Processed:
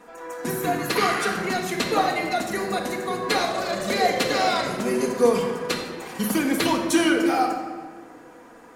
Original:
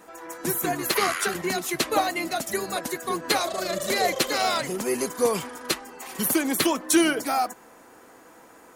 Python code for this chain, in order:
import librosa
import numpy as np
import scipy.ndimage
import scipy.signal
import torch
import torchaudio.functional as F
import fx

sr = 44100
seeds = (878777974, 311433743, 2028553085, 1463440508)

y = fx.high_shelf(x, sr, hz=7700.0, db=-12.0)
y = fx.room_shoebox(y, sr, seeds[0], volume_m3=1700.0, walls='mixed', distance_m=1.8)